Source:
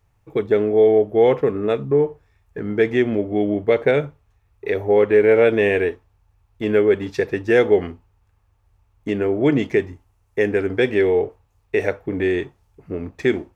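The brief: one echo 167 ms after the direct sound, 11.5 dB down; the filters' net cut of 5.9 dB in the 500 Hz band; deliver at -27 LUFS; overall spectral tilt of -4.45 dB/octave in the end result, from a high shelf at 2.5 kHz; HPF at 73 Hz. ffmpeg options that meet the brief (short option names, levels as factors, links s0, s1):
-af "highpass=73,equalizer=f=500:t=o:g=-7.5,highshelf=f=2500:g=6.5,aecho=1:1:167:0.266,volume=0.631"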